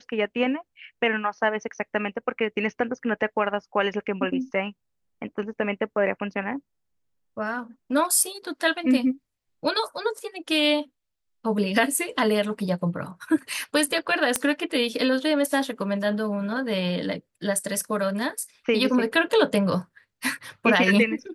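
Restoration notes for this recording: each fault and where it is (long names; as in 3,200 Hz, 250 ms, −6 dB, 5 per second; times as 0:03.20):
0:14.36: click −6 dBFS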